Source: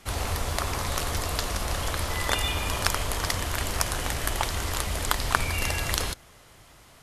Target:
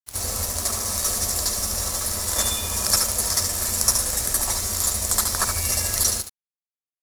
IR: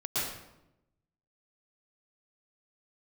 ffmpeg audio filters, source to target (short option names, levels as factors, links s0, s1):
-filter_complex "[0:a]highshelf=f=3500:g=-11.5,aecho=1:1:72:0.501,acrossover=split=170[s0][s1];[s1]aexciter=amount=9.8:drive=8:freq=4500[s2];[s0][s2]amix=inputs=2:normalize=0[s3];[1:a]atrim=start_sample=2205,atrim=end_sample=6615,asetrate=70560,aresample=44100[s4];[s3][s4]afir=irnorm=-1:irlink=0,aeval=exprs='sgn(val(0))*max(abs(val(0))-0.0299,0)':c=same,volume=0.841"